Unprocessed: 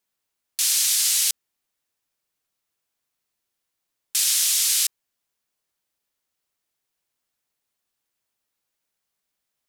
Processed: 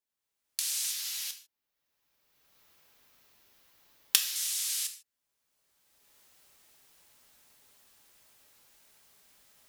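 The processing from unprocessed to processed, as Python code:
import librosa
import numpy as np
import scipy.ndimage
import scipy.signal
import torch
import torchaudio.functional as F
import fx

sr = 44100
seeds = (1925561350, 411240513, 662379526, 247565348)

y = fx.recorder_agc(x, sr, target_db=-11.0, rise_db_per_s=23.0, max_gain_db=30)
y = fx.peak_eq(y, sr, hz=8600.0, db=-9.0, octaves=0.78, at=(0.91, 4.36))
y = fx.rev_gated(y, sr, seeds[0], gate_ms=170, shape='falling', drr_db=5.5)
y = y * 10.0 ** (-13.0 / 20.0)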